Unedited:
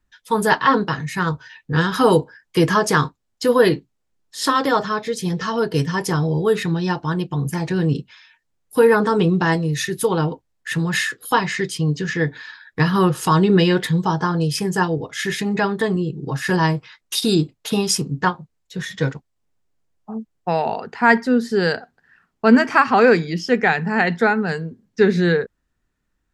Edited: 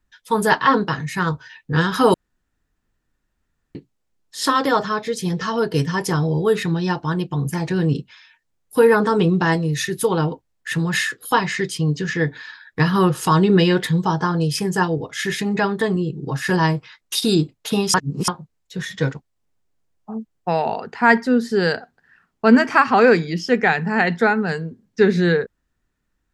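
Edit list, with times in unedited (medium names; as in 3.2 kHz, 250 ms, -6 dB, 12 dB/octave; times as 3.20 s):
2.14–3.75 s: room tone
17.94–18.28 s: reverse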